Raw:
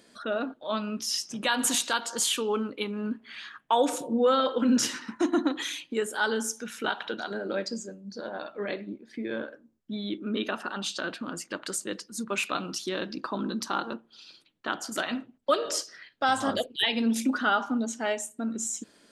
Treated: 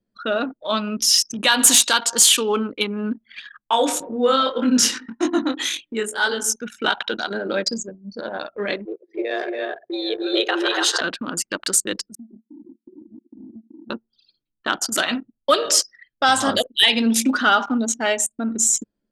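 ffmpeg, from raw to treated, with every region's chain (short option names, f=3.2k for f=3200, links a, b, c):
-filter_complex "[0:a]asettb=1/sr,asplit=3[a][b][c];[a]atrim=end=3.614[d];[b]atrim=start=3.61:end=6.56,asetpts=PTS-STARTPTS,afade=t=in:d=0.004:c=qsin,afade=t=out:st=2.946:d=0.004:c=qsin,asplit=2[e][f];[f]adelay=142,lowpass=f=1.7k:p=1,volume=-18.5dB,asplit=2[g][h];[h]adelay=142,lowpass=f=1.7k:p=1,volume=0.4,asplit=2[i][j];[j]adelay=142,lowpass=f=1.7k:p=1,volume=0.4[k];[e][g][i][k]amix=inputs=4:normalize=0,atrim=end_sample=130095,flanger=delay=19.5:depth=4.1:speed=1.8[l];[c]atrim=start=6.556[m];[d][l]acrossfade=d=0.004:c1=hsin:c2=qsin[n];[n][m]acrossfade=d=0.004:c1=qsin:c2=hsin,asettb=1/sr,asplit=3[o][p][q];[o]atrim=end=8.854[r];[p]atrim=start=8.85:end=11.01,asetpts=PTS-STARTPTS,afade=t=in:d=0.004:c=qsin,afade=t=out:st=2.156:d=0.004:c=qsin,afreqshift=130,aecho=1:1:203|282|294|349|770:0.126|0.501|0.668|0.188|0.141,atrim=end_sample=95256[s];[q]atrim=start=11.006[t];[r][s]acrossfade=d=0.004:c1=hsin:c2=qsin[u];[u][t]acrossfade=d=0.004:c1=qsin:c2=hsin,asettb=1/sr,asplit=3[v][w][x];[v]atrim=end=12.154[y];[w]atrim=start=12.15:end=13.9,asetpts=PTS-STARTPTS,afade=t=in:d=0.004:c=qsin,afade=t=out:st=1.746:d=0.004:c=qsin,asuperpass=centerf=270:order=12:qfactor=2,acompressor=threshold=-42dB:ratio=6:attack=3.2:release=140:knee=1:detection=peak[z];[x]atrim=start=13.896[aa];[y][z]acrossfade=d=0.004:c1=hsin:c2=qsin[ab];[ab][aa]acrossfade=d=0.004:c1=qsin:c2=hsin,anlmdn=1,highshelf=f=2.3k:g=9,acontrast=69"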